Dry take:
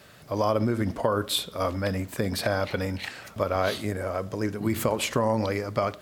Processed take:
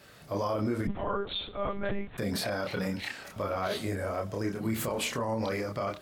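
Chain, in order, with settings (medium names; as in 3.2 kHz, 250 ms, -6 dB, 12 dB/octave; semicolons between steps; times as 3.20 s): chorus voices 4, 0.37 Hz, delay 28 ms, depth 3.3 ms; peak limiter -22.5 dBFS, peak gain reduction 9.5 dB; 0.87–2.18 s: monotone LPC vocoder at 8 kHz 200 Hz; trim +1 dB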